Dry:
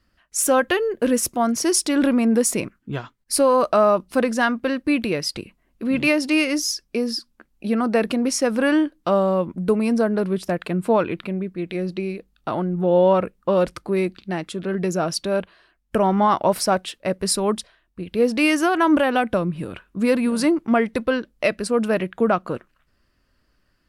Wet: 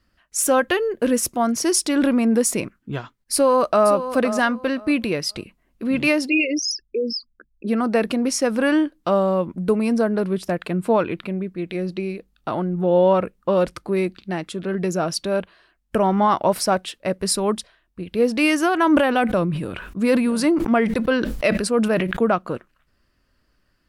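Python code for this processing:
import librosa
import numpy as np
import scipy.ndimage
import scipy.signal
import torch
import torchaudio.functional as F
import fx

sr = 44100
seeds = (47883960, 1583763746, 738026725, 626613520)

y = fx.echo_throw(x, sr, start_s=3.33, length_s=0.54, ms=520, feedback_pct=20, wet_db=-11.0)
y = fx.envelope_sharpen(y, sr, power=3.0, at=(6.27, 7.67), fade=0.02)
y = fx.sustainer(y, sr, db_per_s=44.0, at=(18.78, 22.24))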